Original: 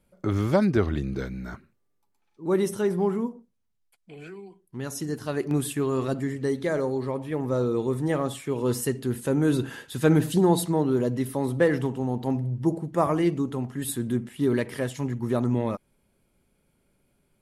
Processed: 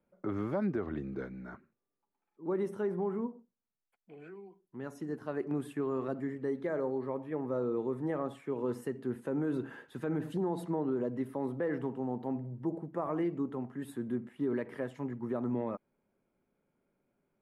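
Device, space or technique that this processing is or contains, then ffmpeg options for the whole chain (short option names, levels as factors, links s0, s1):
DJ mixer with the lows and highs turned down: -filter_complex "[0:a]acrossover=split=170 2100:gain=0.224 1 0.112[s0][s1][s2];[s0][s1][s2]amix=inputs=3:normalize=0,alimiter=limit=0.119:level=0:latency=1:release=80,volume=0.501"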